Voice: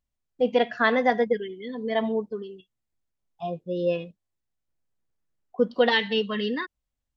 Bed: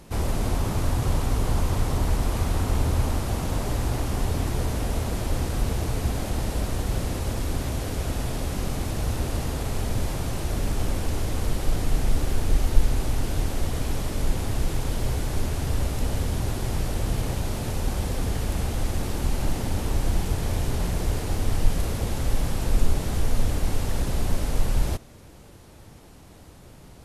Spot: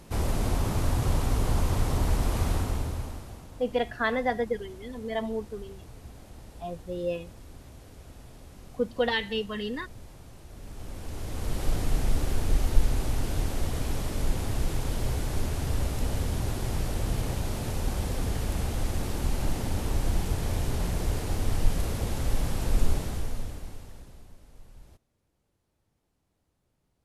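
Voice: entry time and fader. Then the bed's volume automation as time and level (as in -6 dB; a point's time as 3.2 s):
3.20 s, -5.5 dB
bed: 2.52 s -2 dB
3.51 s -20 dB
10.48 s -20 dB
11.64 s -3 dB
22.94 s -3 dB
24.37 s -28 dB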